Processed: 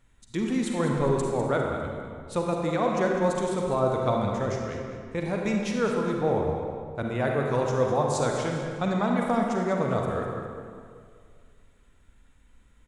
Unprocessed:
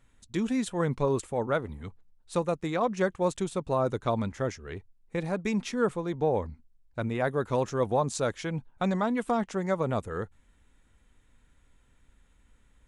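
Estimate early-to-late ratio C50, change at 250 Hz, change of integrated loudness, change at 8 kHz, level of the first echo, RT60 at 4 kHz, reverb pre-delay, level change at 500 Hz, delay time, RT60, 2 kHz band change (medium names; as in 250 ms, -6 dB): 0.5 dB, +3.0 dB, +2.5 dB, +2.0 dB, -10.5 dB, 1.5 s, 39 ms, +3.0 dB, 201 ms, 2.1 s, +3.0 dB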